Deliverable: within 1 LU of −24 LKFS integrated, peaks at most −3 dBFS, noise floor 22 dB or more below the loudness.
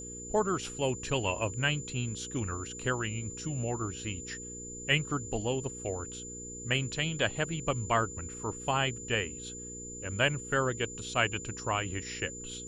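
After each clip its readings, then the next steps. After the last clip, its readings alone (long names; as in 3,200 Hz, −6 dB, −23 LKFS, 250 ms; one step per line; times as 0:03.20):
mains hum 60 Hz; hum harmonics up to 480 Hz; level of the hum −45 dBFS; interfering tone 7,100 Hz; level of the tone −42 dBFS; integrated loudness −32.5 LKFS; sample peak −11.5 dBFS; target loudness −24.0 LKFS
→ hum removal 60 Hz, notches 8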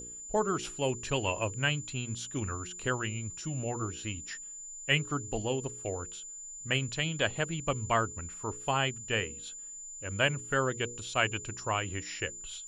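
mains hum none found; interfering tone 7,100 Hz; level of the tone −42 dBFS
→ notch filter 7,100 Hz, Q 30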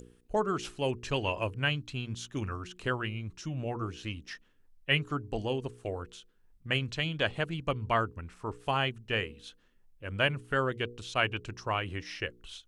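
interfering tone none found; integrated loudness −33.0 LKFS; sample peak −11.0 dBFS; target loudness −24.0 LKFS
→ level +9 dB
brickwall limiter −3 dBFS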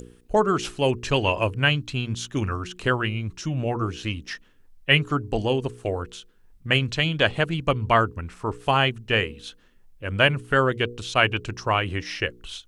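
integrated loudness −24.0 LKFS; sample peak −3.0 dBFS; background noise floor −55 dBFS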